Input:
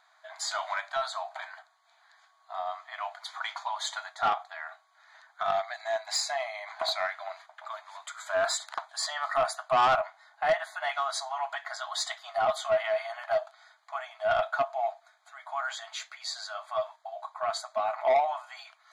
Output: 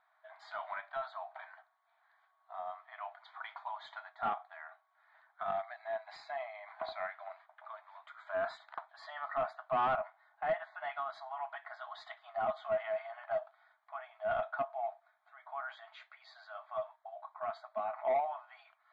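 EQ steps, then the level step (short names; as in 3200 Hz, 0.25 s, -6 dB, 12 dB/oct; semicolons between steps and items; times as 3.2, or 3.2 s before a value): LPF 6600 Hz; dynamic EQ 220 Hz, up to +7 dB, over -55 dBFS, Q 2.3; air absorption 480 m; -6.0 dB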